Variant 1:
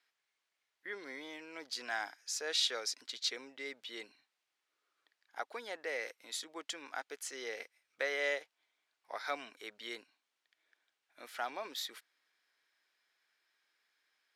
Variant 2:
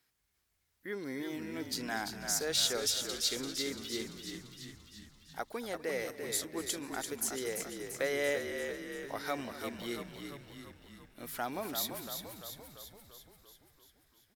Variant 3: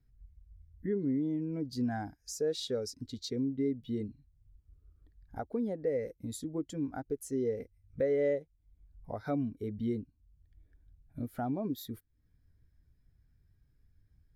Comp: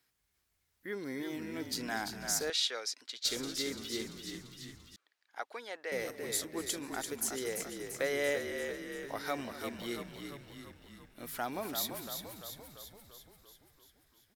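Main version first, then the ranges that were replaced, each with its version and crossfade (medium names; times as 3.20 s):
2
2.50–3.25 s: from 1
4.96–5.92 s: from 1
not used: 3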